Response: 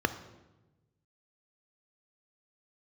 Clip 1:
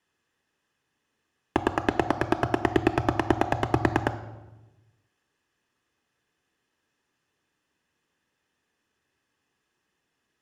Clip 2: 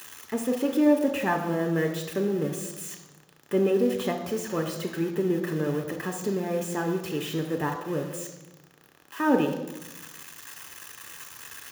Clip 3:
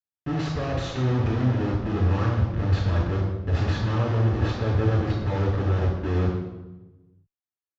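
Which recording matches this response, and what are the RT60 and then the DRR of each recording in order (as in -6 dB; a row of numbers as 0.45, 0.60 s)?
1; 1.1, 1.1, 1.1 s; 10.0, 3.5, -3.5 dB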